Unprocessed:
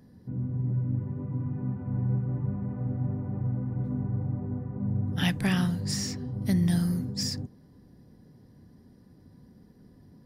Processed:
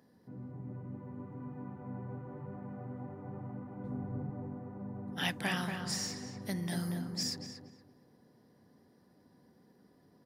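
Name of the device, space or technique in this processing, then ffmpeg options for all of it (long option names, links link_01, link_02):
filter by subtraction: -filter_complex "[0:a]asplit=2[link_01][link_02];[link_02]lowpass=730,volume=-1[link_03];[link_01][link_03]amix=inputs=2:normalize=0,asettb=1/sr,asplit=3[link_04][link_05][link_06];[link_04]atrim=end=3.844[link_07];[link_05]atrim=start=3.84:end=4.3,asetpts=PTS-STARTPTS,afade=type=in:duration=0.004:curve=qsin,afade=type=out:start_time=0.456:duration=0.004:curve=qsin,lowshelf=frequency=190:gain=9[link_08];[link_06]atrim=start=4.296[link_09];[link_07][link_08]acrossfade=duration=0.004:curve1=hsin:curve2=qsin[link_10];[link_10][link_09]acrossfade=duration=0.004:curve1=qsin:curve2=hsin,asplit=2[link_11][link_12];[link_12]adelay=235,lowpass=frequency=2200:poles=1,volume=-5dB,asplit=2[link_13][link_14];[link_14]adelay=235,lowpass=frequency=2200:poles=1,volume=0.33,asplit=2[link_15][link_16];[link_16]adelay=235,lowpass=frequency=2200:poles=1,volume=0.33,asplit=2[link_17][link_18];[link_18]adelay=235,lowpass=frequency=2200:poles=1,volume=0.33[link_19];[link_11][link_13][link_15][link_17][link_19]amix=inputs=5:normalize=0,volume=-4dB"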